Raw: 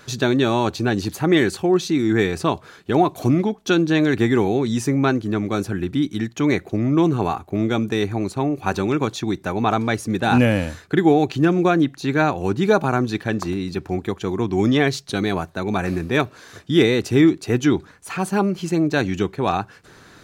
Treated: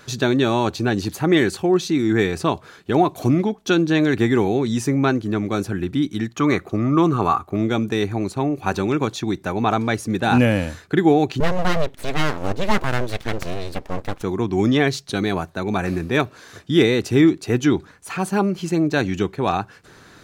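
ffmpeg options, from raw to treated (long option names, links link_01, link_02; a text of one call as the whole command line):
ffmpeg -i in.wav -filter_complex "[0:a]asettb=1/sr,asplit=3[link_01][link_02][link_03];[link_01]atrim=end=6.344[link_04];[link_02]atrim=start=6.34:end=7.56,asetpts=PTS-STARTPTS,afade=type=in:duration=0.004:curve=qsin,afade=type=out:start_time=1.216:duration=0.004:curve=qsin,equalizer=frequency=1200:width_type=o:width=0.3:gain=14[link_05];[link_03]atrim=start=7.556[link_06];[link_04][link_05]acrossfade=duration=0.004:curve1=hsin:curve2=qsin[link_07];[link_07][link_06]acrossfade=duration=0.004:curve1=qsin:curve2=hsin,asettb=1/sr,asplit=3[link_08][link_09][link_10];[link_08]atrim=end=11.404[link_11];[link_09]atrim=start=11.4:end=14.23,asetpts=PTS-STARTPTS,afade=type=in:duration=0.004:curve=qsin,afade=type=out:start_time=2.826:duration=0.004:curve=qsin,aeval=exprs='abs(val(0))':channel_layout=same[link_12];[link_10]atrim=start=14.226[link_13];[link_11][link_12]acrossfade=duration=0.004:curve1=hsin:curve2=qsin[link_14];[link_14][link_13]acrossfade=duration=0.004:curve1=qsin:curve2=hsin" out.wav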